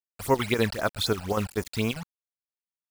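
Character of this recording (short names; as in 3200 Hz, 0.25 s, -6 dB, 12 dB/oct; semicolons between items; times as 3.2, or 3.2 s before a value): chopped level 5.1 Hz, depth 60%, duty 75%; a quantiser's noise floor 6-bit, dither none; phasing stages 12, 3.9 Hz, lowest notch 330–3800 Hz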